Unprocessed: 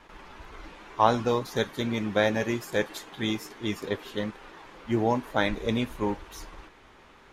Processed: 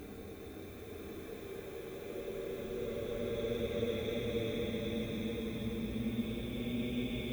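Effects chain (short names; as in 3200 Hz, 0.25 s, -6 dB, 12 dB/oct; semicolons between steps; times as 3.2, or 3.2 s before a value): octaver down 2 oct, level -4 dB; low-pass opened by the level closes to 2100 Hz, open at -21 dBFS; compressor 6:1, threshold -38 dBFS, peak gain reduction 22 dB; notch comb 960 Hz; added noise violet -63 dBFS; Paulstretch 31×, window 0.10 s, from 5.56; bloom reverb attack 1.03 s, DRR 2.5 dB; gain +1 dB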